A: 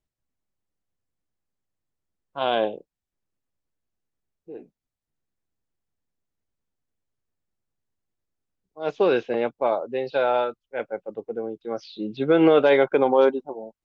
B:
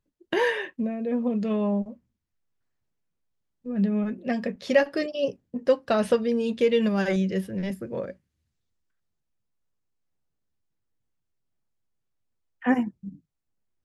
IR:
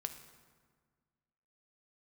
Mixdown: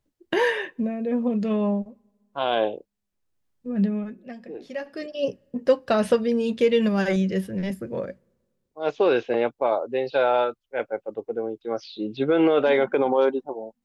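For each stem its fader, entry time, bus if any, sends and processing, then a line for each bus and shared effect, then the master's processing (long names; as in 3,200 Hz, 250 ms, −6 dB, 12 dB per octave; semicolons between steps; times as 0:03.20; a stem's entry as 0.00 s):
+2.0 dB, 0.00 s, no send, parametric band 180 Hz −7 dB 0.45 octaves; brickwall limiter −13.5 dBFS, peak gain reduction 6 dB
+1.5 dB, 0.00 s, send −23.5 dB, automatic ducking −21 dB, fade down 0.65 s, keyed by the first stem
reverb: on, RT60 1.6 s, pre-delay 3 ms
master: no processing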